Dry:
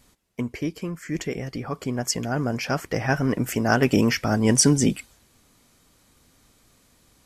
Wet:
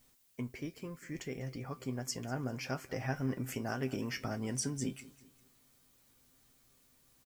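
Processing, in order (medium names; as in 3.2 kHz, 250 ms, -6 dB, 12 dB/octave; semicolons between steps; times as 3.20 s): compression, threshold -21 dBFS, peak gain reduction 8.5 dB; added noise blue -58 dBFS; feedback comb 130 Hz, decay 0.16 s, harmonics all, mix 70%; feedback delay 197 ms, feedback 42%, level -20 dB; trim -6.5 dB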